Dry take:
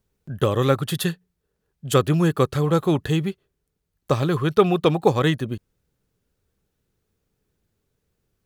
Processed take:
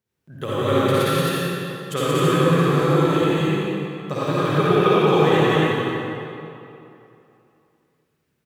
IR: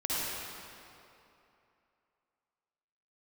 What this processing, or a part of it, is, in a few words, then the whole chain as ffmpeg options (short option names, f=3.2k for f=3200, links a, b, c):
stadium PA: -filter_complex "[0:a]highpass=120,equalizer=f=2.1k:t=o:w=1.2:g=5,aecho=1:1:177.8|265.3:0.794|0.708[a];[1:a]atrim=start_sample=2205[b];[a][b]afir=irnorm=-1:irlink=0,volume=-8.5dB"